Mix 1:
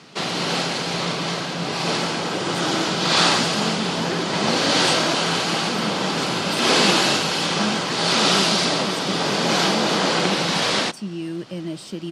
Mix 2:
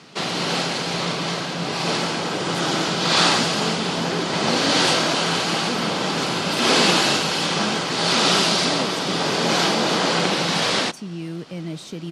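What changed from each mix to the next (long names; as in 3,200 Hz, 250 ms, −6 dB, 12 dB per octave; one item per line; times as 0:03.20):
speech: remove EQ curve with evenly spaced ripples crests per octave 1.3, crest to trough 9 dB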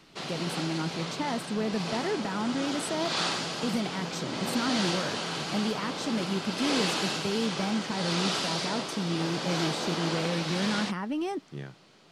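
speech: entry −2.05 s
background −12.0 dB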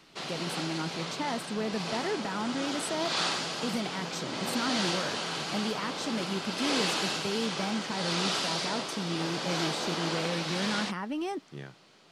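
master: add low-shelf EQ 320 Hz −5 dB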